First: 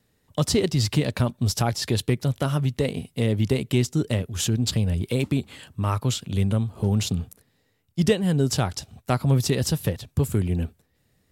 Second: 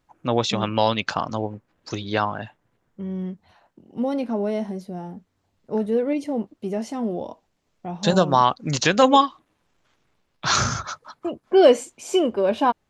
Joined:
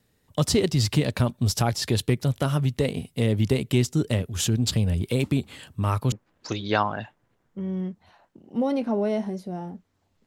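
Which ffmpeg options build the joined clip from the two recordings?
ffmpeg -i cue0.wav -i cue1.wav -filter_complex "[0:a]apad=whole_dur=10.26,atrim=end=10.26,atrim=end=6.122[link_01];[1:a]atrim=start=1.538:end=5.68[link_02];[link_01][link_02]acrossfade=duration=0.004:curve1=hsin:curve2=hsin" out.wav

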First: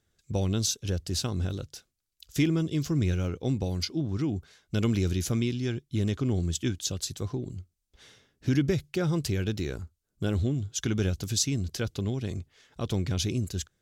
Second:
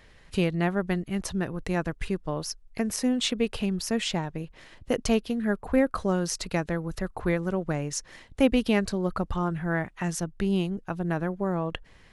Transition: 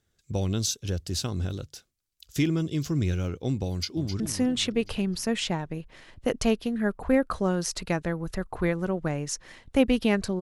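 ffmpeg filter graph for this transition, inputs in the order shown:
ffmpeg -i cue0.wav -i cue1.wav -filter_complex "[0:a]apad=whole_dur=10.41,atrim=end=10.41,atrim=end=4.202[link_01];[1:a]atrim=start=2.838:end=9.05[link_02];[link_01][link_02]acrossfade=duration=0.004:curve1=hsin:curve2=hsin,asplit=2[link_03][link_04];[link_04]afade=type=in:start_time=3.7:duration=0.01,afade=type=out:start_time=4.2:duration=0.01,aecho=0:1:260|520|780|1040|1300|1560:0.375837|0.187919|0.0939594|0.0469797|0.0234898|0.0117449[link_05];[link_03][link_05]amix=inputs=2:normalize=0" out.wav

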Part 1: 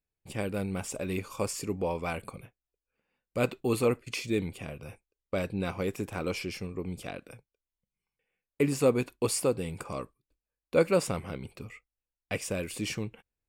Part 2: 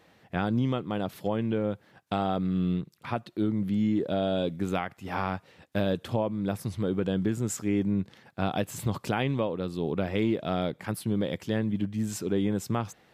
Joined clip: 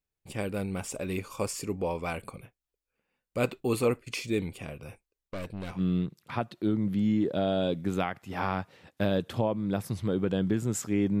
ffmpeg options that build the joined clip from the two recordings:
ffmpeg -i cue0.wav -i cue1.wav -filter_complex "[0:a]asettb=1/sr,asplit=3[link_01][link_02][link_03];[link_01]atrim=end=5.284[link_04];[link_02]atrim=start=5.28:end=5.81,asetpts=PTS-STARTPTS,afade=type=in:duration=0.004:curve=qsin,afade=type=out:start_time=0.526:duration=0.004:curve=qsin,aeval=exprs='(tanh(44.7*val(0)+0.6)-tanh(0.6))/44.7':channel_layout=same[link_05];[link_03]atrim=start=5.806[link_06];[link_04][link_05]acrossfade=duration=0.004:curve1=hsin:curve2=qsin[link_07];[link_07][link_06]acrossfade=duration=0.004:curve1=qsin:curve2=hsin,apad=whole_dur=11.2,atrim=end=11.2,atrim=end=5.81,asetpts=PTS-STARTPTS[link_08];[1:a]atrim=start=2.5:end=7.95,asetpts=PTS-STARTPTS[link_09];[link_08][link_09]acrossfade=duration=0.06:curve1=tri:curve2=tri" out.wav

